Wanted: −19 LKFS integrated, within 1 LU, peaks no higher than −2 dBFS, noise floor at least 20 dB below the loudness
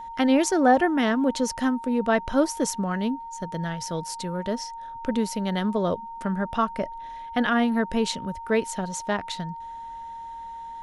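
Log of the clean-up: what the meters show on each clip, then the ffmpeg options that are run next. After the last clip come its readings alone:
interfering tone 920 Hz; level of the tone −35 dBFS; integrated loudness −25.5 LKFS; sample peak −7.5 dBFS; target loudness −19.0 LKFS
→ -af "bandreject=frequency=920:width=30"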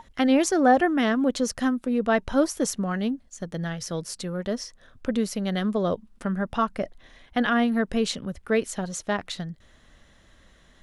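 interfering tone none found; integrated loudness −25.5 LKFS; sample peak −7.5 dBFS; target loudness −19.0 LKFS
→ -af "volume=6.5dB,alimiter=limit=-2dB:level=0:latency=1"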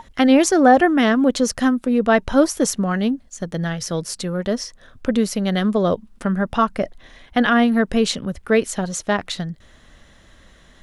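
integrated loudness −19.5 LKFS; sample peak −2.0 dBFS; background noise floor −50 dBFS

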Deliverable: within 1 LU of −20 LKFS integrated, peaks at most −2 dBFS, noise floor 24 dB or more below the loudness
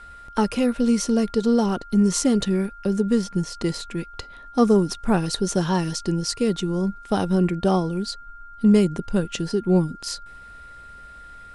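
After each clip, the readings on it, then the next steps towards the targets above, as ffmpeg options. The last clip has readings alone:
interfering tone 1,400 Hz; level of the tone −41 dBFS; integrated loudness −22.5 LKFS; sample peak −6.5 dBFS; target loudness −20.0 LKFS
→ -af "bandreject=frequency=1400:width=30"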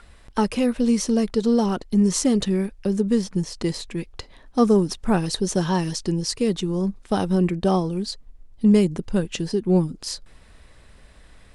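interfering tone none found; integrated loudness −22.5 LKFS; sample peak −6.5 dBFS; target loudness −20.0 LKFS
→ -af "volume=2.5dB"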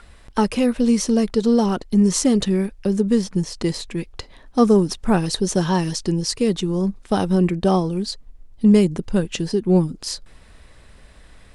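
integrated loudness −20.0 LKFS; sample peak −4.0 dBFS; background noise floor −48 dBFS

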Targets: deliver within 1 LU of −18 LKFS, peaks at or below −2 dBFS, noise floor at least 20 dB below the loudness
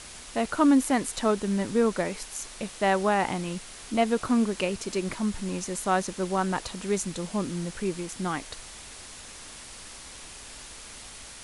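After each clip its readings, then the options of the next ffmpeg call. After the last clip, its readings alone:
background noise floor −44 dBFS; target noise floor −48 dBFS; integrated loudness −27.5 LKFS; sample peak −9.5 dBFS; target loudness −18.0 LKFS
→ -af "afftdn=noise_reduction=6:noise_floor=-44"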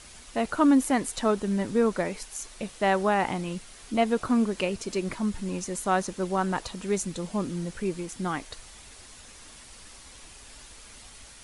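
background noise floor −49 dBFS; integrated loudness −27.5 LKFS; sample peak −10.0 dBFS; target loudness −18.0 LKFS
→ -af "volume=9.5dB,alimiter=limit=-2dB:level=0:latency=1"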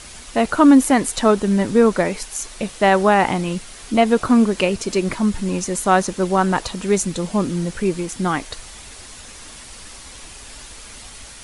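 integrated loudness −18.5 LKFS; sample peak −2.0 dBFS; background noise floor −39 dBFS

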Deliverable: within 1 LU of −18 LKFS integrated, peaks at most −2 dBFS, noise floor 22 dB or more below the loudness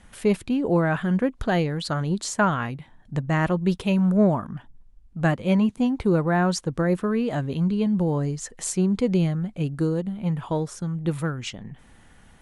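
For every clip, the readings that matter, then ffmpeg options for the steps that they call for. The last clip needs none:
integrated loudness −24.0 LKFS; sample peak −9.0 dBFS; target loudness −18.0 LKFS
→ -af "volume=6dB"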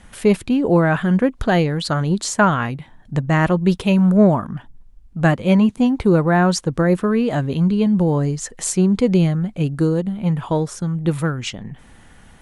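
integrated loudness −18.0 LKFS; sample peak −3.0 dBFS; background noise floor −47 dBFS

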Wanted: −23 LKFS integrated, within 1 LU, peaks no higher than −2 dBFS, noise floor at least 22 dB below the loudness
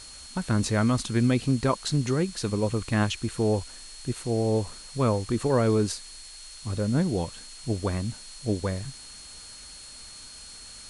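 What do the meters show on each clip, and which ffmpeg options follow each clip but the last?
interfering tone 4,300 Hz; level of the tone −46 dBFS; background noise floor −45 dBFS; target noise floor −49 dBFS; integrated loudness −27.0 LKFS; sample peak −12.0 dBFS; target loudness −23.0 LKFS
→ -af "bandreject=frequency=4300:width=30"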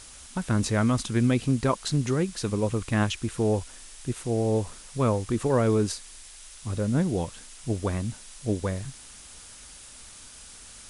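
interfering tone none found; background noise floor −47 dBFS; target noise floor −49 dBFS
→ -af "afftdn=noise_reduction=6:noise_floor=-47"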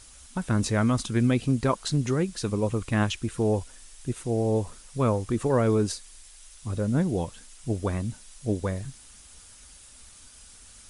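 background noise floor −50 dBFS; integrated loudness −27.0 LKFS; sample peak −11.5 dBFS; target loudness −23.0 LKFS
→ -af "volume=4dB"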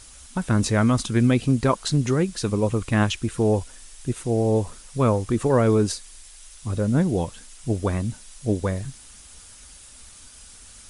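integrated loudness −23.0 LKFS; sample peak −7.5 dBFS; background noise floor −46 dBFS

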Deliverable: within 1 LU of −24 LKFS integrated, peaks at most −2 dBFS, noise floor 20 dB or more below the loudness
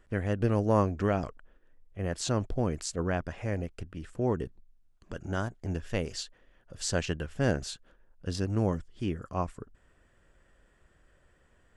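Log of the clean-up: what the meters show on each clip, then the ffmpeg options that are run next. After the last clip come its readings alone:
integrated loudness −32.0 LKFS; sample peak −12.0 dBFS; target loudness −24.0 LKFS
→ -af "volume=8dB"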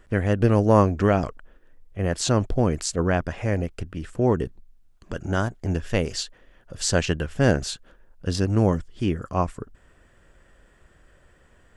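integrated loudness −24.0 LKFS; sample peak −4.0 dBFS; background noise floor −57 dBFS

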